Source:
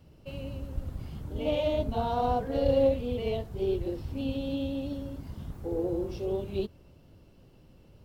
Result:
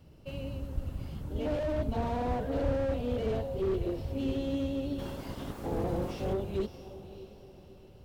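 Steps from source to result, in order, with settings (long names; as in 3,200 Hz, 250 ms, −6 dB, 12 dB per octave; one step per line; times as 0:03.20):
0:04.98–0:06.32: ceiling on every frequency bin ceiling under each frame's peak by 18 dB
feedback delay with all-pass diffusion 597 ms, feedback 40%, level −15 dB
slew-rate limiting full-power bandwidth 17 Hz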